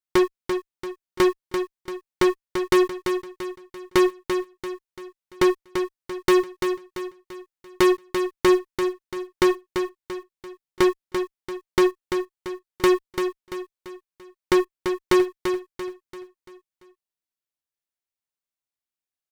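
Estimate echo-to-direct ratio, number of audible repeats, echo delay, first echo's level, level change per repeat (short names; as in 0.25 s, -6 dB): -6.0 dB, 4, 0.34 s, -7.0 dB, -7.5 dB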